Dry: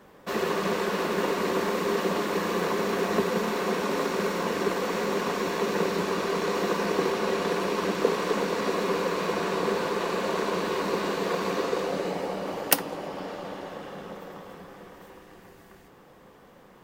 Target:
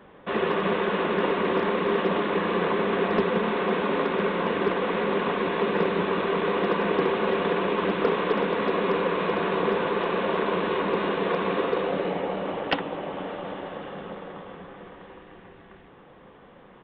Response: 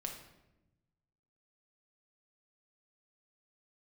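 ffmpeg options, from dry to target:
-af "aresample=8000,aresample=44100,aresample=11025,asoftclip=type=hard:threshold=-17dB,aresample=44100,volume=2.5dB"

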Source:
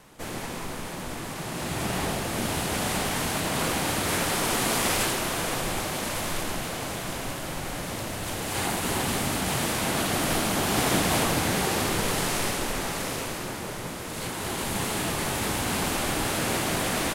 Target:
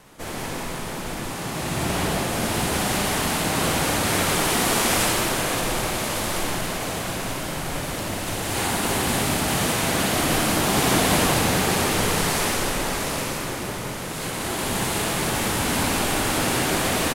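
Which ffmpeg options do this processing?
ffmpeg -i in.wav -af "aecho=1:1:61|182:0.596|0.631,volume=2dB" out.wav

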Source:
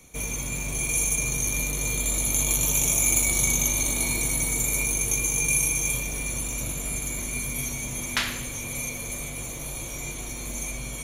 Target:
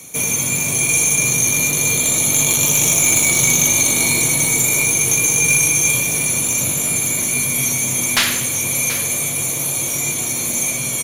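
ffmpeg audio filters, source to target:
ffmpeg -i in.wav -filter_complex "[0:a]highpass=frequency=100:width=0.5412,highpass=frequency=100:width=1.3066,aemphasis=mode=production:type=cd,acrossover=split=5900[link_01][link_02];[link_02]acompressor=threshold=-27dB:ratio=4:attack=1:release=60[link_03];[link_01][link_03]amix=inputs=2:normalize=0,aeval=exprs='0.531*(cos(1*acos(clip(val(0)/0.531,-1,1)))-cos(1*PI/2))+0.237*(cos(5*acos(clip(val(0)/0.531,-1,1)))-cos(5*PI/2))+0.0237*(cos(6*acos(clip(val(0)/0.531,-1,1)))-cos(6*PI/2))':channel_layout=same,asplit=2[link_04][link_05];[link_05]aecho=0:1:732:0.211[link_06];[link_04][link_06]amix=inputs=2:normalize=0" out.wav

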